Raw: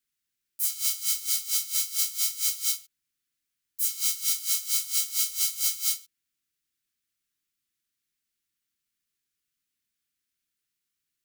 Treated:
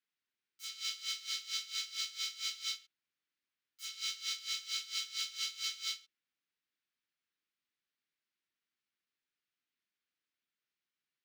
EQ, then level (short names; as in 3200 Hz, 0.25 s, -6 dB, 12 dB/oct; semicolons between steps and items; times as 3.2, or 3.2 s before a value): HPF 390 Hz 6 dB/oct; air absorption 200 m; dynamic EQ 3500 Hz, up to +4 dB, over -55 dBFS, Q 1.8; 0.0 dB